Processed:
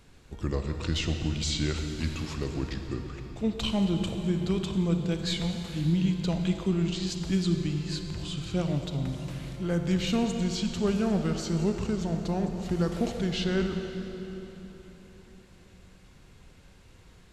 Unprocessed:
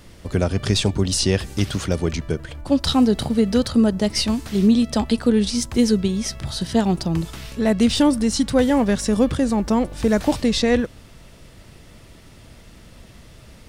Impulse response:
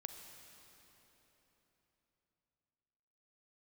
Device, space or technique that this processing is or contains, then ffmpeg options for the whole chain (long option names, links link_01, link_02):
slowed and reverbed: -filter_complex "[0:a]asetrate=34839,aresample=44100[link_01];[1:a]atrim=start_sample=2205[link_02];[link_01][link_02]afir=irnorm=-1:irlink=0,volume=-6dB"